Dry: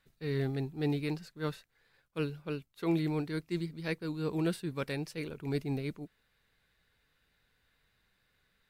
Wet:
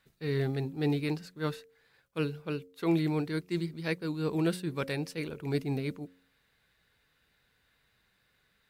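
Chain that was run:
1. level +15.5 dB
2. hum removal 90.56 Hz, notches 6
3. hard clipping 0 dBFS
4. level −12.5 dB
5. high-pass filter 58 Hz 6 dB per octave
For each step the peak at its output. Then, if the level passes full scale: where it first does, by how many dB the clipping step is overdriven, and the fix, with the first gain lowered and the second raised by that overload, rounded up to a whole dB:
−4.0, −4.0, −4.0, −16.5, −17.5 dBFS
no step passes full scale

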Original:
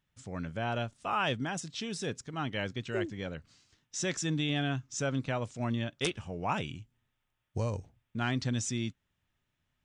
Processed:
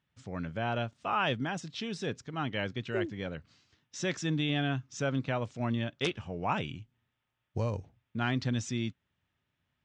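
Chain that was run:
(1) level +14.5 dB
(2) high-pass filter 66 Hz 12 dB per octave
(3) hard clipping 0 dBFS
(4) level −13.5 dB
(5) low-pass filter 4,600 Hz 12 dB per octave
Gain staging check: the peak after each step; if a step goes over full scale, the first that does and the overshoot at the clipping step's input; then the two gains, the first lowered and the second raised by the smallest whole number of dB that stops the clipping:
−2.5, −2.0, −2.0, −15.5, −16.5 dBFS
no step passes full scale

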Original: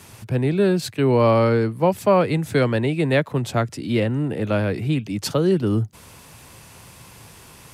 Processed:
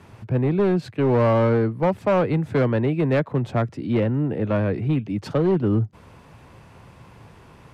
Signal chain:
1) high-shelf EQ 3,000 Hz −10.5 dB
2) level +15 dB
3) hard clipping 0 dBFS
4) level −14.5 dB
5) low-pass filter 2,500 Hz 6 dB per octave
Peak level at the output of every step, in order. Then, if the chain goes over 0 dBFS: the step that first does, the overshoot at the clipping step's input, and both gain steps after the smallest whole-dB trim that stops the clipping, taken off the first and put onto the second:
−7.0, +8.0, 0.0, −14.5, −14.5 dBFS
step 2, 8.0 dB
step 2 +7 dB, step 4 −6.5 dB

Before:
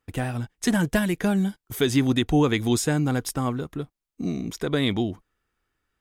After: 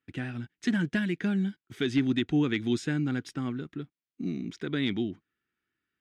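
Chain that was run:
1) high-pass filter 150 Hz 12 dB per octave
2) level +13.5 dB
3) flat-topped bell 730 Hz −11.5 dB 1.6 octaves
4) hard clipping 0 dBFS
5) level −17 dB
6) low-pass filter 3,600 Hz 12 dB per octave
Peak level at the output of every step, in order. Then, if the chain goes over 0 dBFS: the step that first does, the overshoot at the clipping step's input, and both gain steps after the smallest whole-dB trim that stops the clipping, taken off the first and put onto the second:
−8.5, +5.0, +3.5, 0.0, −17.0, −17.0 dBFS
step 2, 3.5 dB
step 2 +9.5 dB, step 5 −13 dB

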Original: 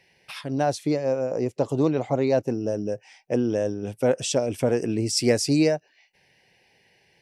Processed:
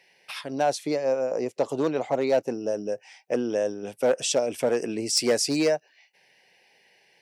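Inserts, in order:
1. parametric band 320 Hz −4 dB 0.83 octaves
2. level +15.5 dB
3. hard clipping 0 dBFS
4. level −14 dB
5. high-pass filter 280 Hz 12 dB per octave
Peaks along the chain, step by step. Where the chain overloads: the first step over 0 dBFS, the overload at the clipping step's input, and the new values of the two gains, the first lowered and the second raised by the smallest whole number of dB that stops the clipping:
−8.0, +7.5, 0.0, −14.0, −10.5 dBFS
step 2, 7.5 dB
step 2 +7.5 dB, step 4 −6 dB

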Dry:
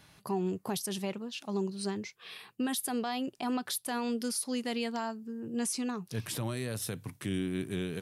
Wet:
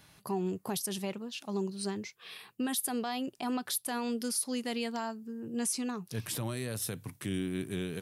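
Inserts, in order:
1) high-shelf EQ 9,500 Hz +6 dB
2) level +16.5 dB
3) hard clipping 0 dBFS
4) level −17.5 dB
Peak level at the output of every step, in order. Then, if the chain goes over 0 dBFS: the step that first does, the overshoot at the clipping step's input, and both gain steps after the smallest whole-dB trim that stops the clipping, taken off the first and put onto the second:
−19.5, −3.0, −3.0, −20.5 dBFS
no step passes full scale

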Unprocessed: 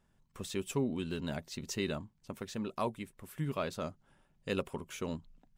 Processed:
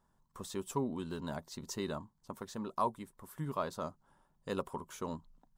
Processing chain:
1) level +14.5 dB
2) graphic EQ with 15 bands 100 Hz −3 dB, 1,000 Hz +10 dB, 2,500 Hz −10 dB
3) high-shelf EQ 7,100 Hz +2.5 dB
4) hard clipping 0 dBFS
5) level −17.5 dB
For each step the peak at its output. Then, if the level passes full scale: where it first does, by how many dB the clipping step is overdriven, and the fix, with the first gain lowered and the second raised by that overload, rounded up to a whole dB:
−6.0, −3.0, −3.0, −3.0, −20.5 dBFS
no step passes full scale

